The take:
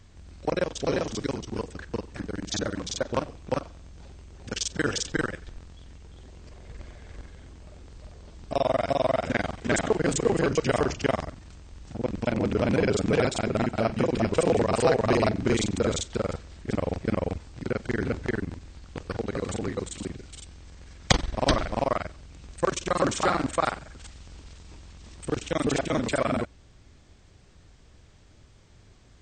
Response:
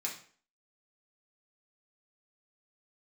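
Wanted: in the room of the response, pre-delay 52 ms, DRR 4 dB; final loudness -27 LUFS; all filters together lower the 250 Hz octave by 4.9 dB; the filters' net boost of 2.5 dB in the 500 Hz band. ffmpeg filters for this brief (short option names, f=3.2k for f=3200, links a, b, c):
-filter_complex "[0:a]equalizer=f=250:t=o:g=-8.5,equalizer=f=500:t=o:g=5,asplit=2[a][b];[1:a]atrim=start_sample=2205,adelay=52[c];[b][c]afir=irnorm=-1:irlink=0,volume=-6dB[d];[a][d]amix=inputs=2:normalize=0,volume=-1dB"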